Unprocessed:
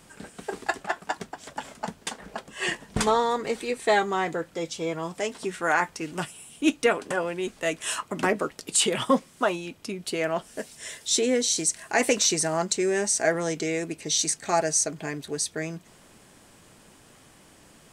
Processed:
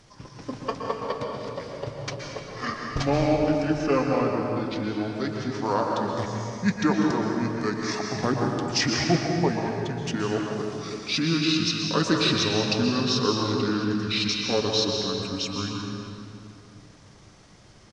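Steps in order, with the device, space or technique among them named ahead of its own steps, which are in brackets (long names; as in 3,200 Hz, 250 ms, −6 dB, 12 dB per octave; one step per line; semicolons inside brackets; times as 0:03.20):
monster voice (pitch shifter −7.5 semitones; low-shelf EQ 140 Hz +3.5 dB; convolution reverb RT60 2.6 s, pre-delay 113 ms, DRR 0 dB)
level −2 dB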